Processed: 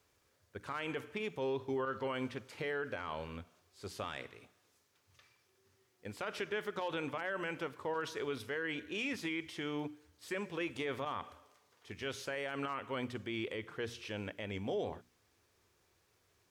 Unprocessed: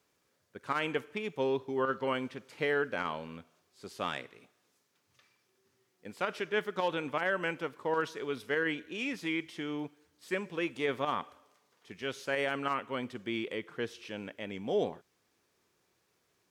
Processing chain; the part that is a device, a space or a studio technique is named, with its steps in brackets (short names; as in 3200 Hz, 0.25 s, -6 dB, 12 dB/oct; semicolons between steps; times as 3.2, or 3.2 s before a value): car stereo with a boomy subwoofer (resonant low shelf 120 Hz +8.5 dB, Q 1.5; limiter -29.5 dBFS, peak gain reduction 11.5 dB); notches 60/120/180/240/300 Hz; gain +1 dB